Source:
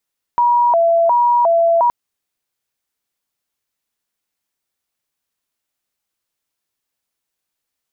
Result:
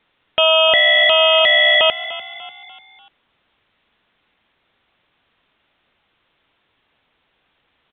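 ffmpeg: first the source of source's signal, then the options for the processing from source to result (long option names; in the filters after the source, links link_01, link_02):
-f lavfi -i "aevalsrc='0.316*sin(2*PI*(816*t+144/1.4*(0.5-abs(mod(1.4*t,1)-0.5))))':duration=1.52:sample_rate=44100"
-filter_complex "[0:a]aresample=8000,aeval=exprs='0.335*sin(PI/2*7.08*val(0)/0.335)':channel_layout=same,aresample=44100,asplit=5[link_01][link_02][link_03][link_04][link_05];[link_02]adelay=295,afreqshift=39,volume=-15.5dB[link_06];[link_03]adelay=590,afreqshift=78,volume=-21.9dB[link_07];[link_04]adelay=885,afreqshift=117,volume=-28.3dB[link_08];[link_05]adelay=1180,afreqshift=156,volume=-34.6dB[link_09];[link_01][link_06][link_07][link_08][link_09]amix=inputs=5:normalize=0"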